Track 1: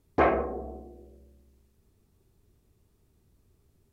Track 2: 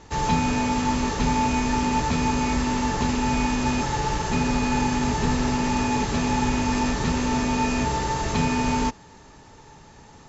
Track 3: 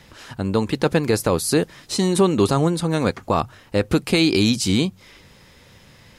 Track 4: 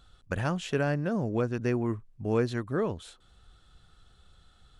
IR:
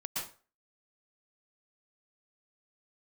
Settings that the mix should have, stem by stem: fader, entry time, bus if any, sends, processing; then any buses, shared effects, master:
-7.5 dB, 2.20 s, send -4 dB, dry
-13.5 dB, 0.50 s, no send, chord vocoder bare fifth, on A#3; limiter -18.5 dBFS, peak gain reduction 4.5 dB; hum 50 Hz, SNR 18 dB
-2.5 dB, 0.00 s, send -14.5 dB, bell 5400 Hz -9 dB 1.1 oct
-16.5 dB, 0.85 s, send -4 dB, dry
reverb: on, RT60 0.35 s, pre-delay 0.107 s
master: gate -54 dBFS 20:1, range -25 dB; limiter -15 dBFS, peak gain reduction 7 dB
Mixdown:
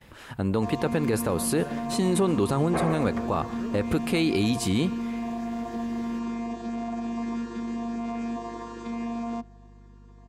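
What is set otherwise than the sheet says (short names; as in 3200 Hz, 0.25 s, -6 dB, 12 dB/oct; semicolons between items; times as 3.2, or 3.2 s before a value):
stem 1: entry 2.20 s -> 2.55 s; stem 2 -13.5 dB -> -6.0 dB; stem 3: send -14.5 dB -> -23 dB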